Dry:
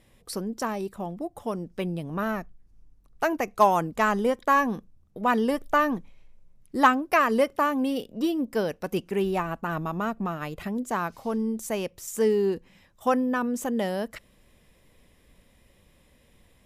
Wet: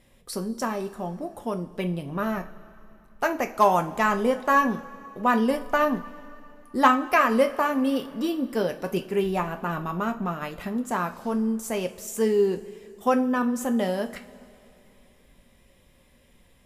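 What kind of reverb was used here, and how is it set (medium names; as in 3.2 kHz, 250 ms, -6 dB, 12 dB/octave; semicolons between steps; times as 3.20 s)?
two-slope reverb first 0.29 s, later 2.9 s, from -20 dB, DRR 4.5 dB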